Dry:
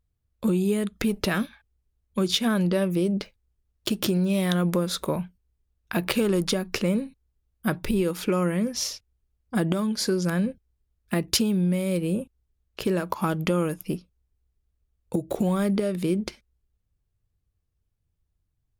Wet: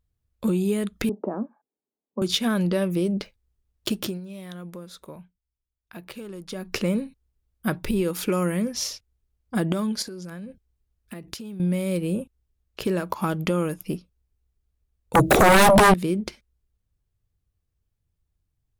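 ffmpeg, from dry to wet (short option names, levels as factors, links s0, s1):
-filter_complex "[0:a]asettb=1/sr,asplit=3[s0][s1][s2];[s0]atrim=end=1.094[s3];[s1]atrim=start=1.09:end=2.22,asetpts=PTS-STARTPTS,afade=t=in:d=0.004:c=qsin,afade=t=out:st=1.126:d=0.004:c=qsin,asuperpass=centerf=460:order=8:qfactor=0.59[s4];[s2]atrim=start=2.216[s5];[s3][s4]acrossfade=d=0.004:c1=hsin:c2=qsin[s6];[s6][s5]acrossfade=d=0.004:c1=qsin:c2=hsin,asettb=1/sr,asplit=3[s7][s8][s9];[s7]atrim=end=8.134[s10];[s8]atrim=start=8.13:end=8.62,asetpts=PTS-STARTPTS,afade=t=in:d=0.004:c=qsin,afade=t=out:st=0.486:d=0.004:c=qsin,highshelf=f=7100:g=8.5[s11];[s9]atrim=start=8.616[s12];[s10][s11]acrossfade=d=0.004:c1=hsin:c2=qsin[s13];[s13][s12]acrossfade=d=0.004:c1=qsin:c2=hsin,asettb=1/sr,asplit=3[s14][s15][s16];[s14]atrim=end=10.024[s17];[s15]atrim=start=10.02:end=11.6,asetpts=PTS-STARTPTS,afade=t=in:d=0.004:c=qsin,afade=t=out:st=1.576:d=0.004:c=qsin,acompressor=threshold=0.0224:ratio=16:attack=3.2:release=140:knee=1:detection=peak[s18];[s16]atrim=start=11.596[s19];[s17][s18]acrossfade=d=0.004:c1=hsin:c2=qsin[s20];[s20][s19]acrossfade=d=0.004:c1=qsin:c2=hsin,asettb=1/sr,asplit=3[s21][s22][s23];[s21]atrim=end=15.154[s24];[s22]atrim=start=15.15:end=15.94,asetpts=PTS-STARTPTS,afade=t=in:d=0.004:c=qsin,afade=t=out:st=0.786:d=0.004:c=qsin,aeval=exprs='0.299*sin(PI/2*7.08*val(0)/0.299)':c=same[s25];[s23]atrim=start=15.936[s26];[s24][s25]acrossfade=d=0.004:c1=hsin:c2=qsin[s27];[s27][s26]acrossfade=d=0.004:c1=qsin:c2=hsin,asplit=3[s28][s29][s30];[s28]atrim=end=4.21,asetpts=PTS-STARTPTS,afade=t=out:st=3.93:d=0.28:silence=0.177828[s31];[s29]atrim=start=4.21:end=6.48,asetpts=PTS-STARTPTS,volume=0.178[s32];[s30]atrim=start=6.48,asetpts=PTS-STARTPTS,afade=t=in:d=0.28:silence=0.177828[s33];[s31][s32][s33]concat=n=3:v=0:a=1"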